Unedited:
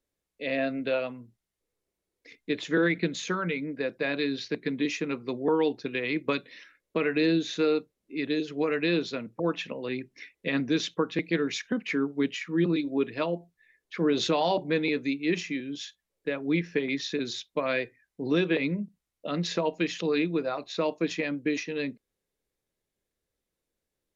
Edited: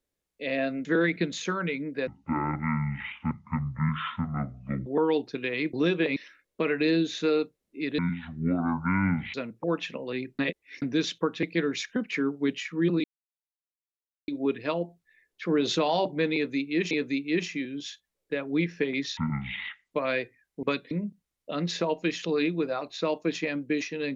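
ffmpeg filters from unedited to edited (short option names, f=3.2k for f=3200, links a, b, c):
-filter_complex "[0:a]asplit=16[a][b][c][d][e][f][g][h][i][j][k][l][m][n][o][p];[a]atrim=end=0.852[q];[b]atrim=start=2.668:end=3.894[r];[c]atrim=start=3.89:end=5.37,asetpts=PTS-STARTPTS,asetrate=23373,aresample=44100,atrim=end_sample=123147,asetpts=PTS-STARTPTS[s];[d]atrim=start=5.366:end=6.242[t];[e]atrim=start=18.238:end=18.672[u];[f]atrim=start=6.518:end=8.344[v];[g]atrim=start=8.34:end=9.1,asetpts=PTS-STARTPTS,asetrate=24696,aresample=44100[w];[h]atrim=start=9.096:end=10.152[x];[i]atrim=start=10.148:end=10.582,asetpts=PTS-STARTPTS,areverse[y];[j]atrim=start=10.578:end=12.8,asetpts=PTS-STARTPTS,afade=t=out:st=2.218:d=0.004:c=hsin,apad=pad_dur=1.24[z];[k]atrim=start=12.8:end=15.432,asetpts=PTS-STARTPTS,afade=t=in:d=0.004:c=hsin[aa];[l]atrim=start=14.858:end=17.124[ab];[m]atrim=start=17.12:end=17.52,asetpts=PTS-STARTPTS,asetrate=23814,aresample=44100[ac];[n]atrim=start=17.516:end=18.242[ad];[o]atrim=start=6.238:end=6.522[ae];[p]atrim=start=18.668[af];[q][r]acrossfade=d=0.004:c1=hsin:c2=hsin[ag];[ag][s]acrossfade=d=0.004:c1=hsin:c2=hsin[ah];[ah][t]acrossfade=d=0.004:c1=hsin:c2=hsin[ai];[ai][u]acrossfade=d=0.004:c1=hsin:c2=hsin[aj];[aj][v]acrossfade=d=0.004:c1=hsin:c2=hsin[ak];[ak][w]acrossfade=d=0.004:c1=hsin:c2=hsin[al];[al][x]acrossfade=d=0.004:c1=hsin:c2=hsin[am];[am][y]acrossfade=d=0.004:c1=hsin:c2=hsin[an];[z][aa]concat=n=2:v=0:a=1[ao];[an][ao]acrossfade=d=0.004:c1=hsin:c2=hsin[ap];[ap][ab]acrossfade=d=0.004:c1=hsin:c2=hsin[aq];[aq][ac]acrossfade=d=0.004:c1=hsin:c2=hsin[ar];[ar][ad]acrossfade=d=0.004:c1=hsin:c2=hsin[as];[as][ae]acrossfade=d=0.004:c1=hsin:c2=hsin[at];[at][af]acrossfade=d=0.004:c1=hsin:c2=hsin"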